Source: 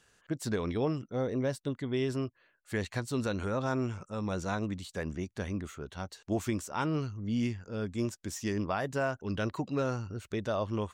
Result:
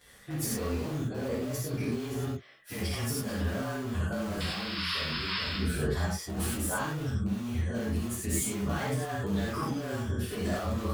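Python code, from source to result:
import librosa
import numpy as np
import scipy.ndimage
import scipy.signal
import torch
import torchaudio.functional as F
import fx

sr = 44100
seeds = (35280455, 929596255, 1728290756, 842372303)

p1 = fx.partial_stretch(x, sr, pct=108)
p2 = (np.mod(10.0 ** (30.0 / 20.0) * p1 + 1.0, 2.0) - 1.0) / 10.0 ** (30.0 / 20.0)
p3 = p1 + (p2 * librosa.db_to_amplitude(-8.5))
p4 = fx.spec_paint(p3, sr, seeds[0], shape='noise', start_s=4.4, length_s=1.18, low_hz=910.0, high_hz=5400.0, level_db=-34.0)
p5 = fx.over_compress(p4, sr, threshold_db=-39.0, ratio=-1.0)
y = fx.rev_gated(p5, sr, seeds[1], gate_ms=130, shape='flat', drr_db=-6.0)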